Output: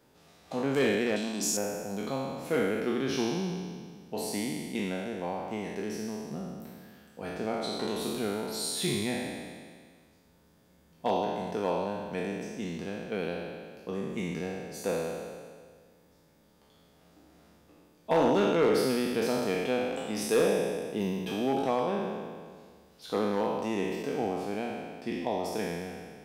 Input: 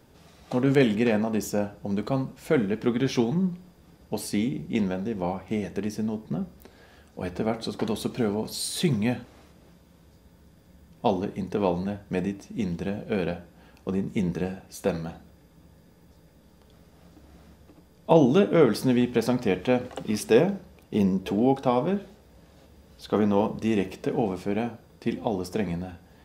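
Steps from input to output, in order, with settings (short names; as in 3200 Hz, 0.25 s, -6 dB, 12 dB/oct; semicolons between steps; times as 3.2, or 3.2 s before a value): spectral trails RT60 1.83 s; 1.16–1.57 graphic EQ 125/250/500/1000/2000/4000/8000 Hz -12/+7/-10/-5/-9/+10/+10 dB; hard clip -10.5 dBFS, distortion -20 dB; low shelf 150 Hz -11 dB; notches 60/120 Hz; gain -6.5 dB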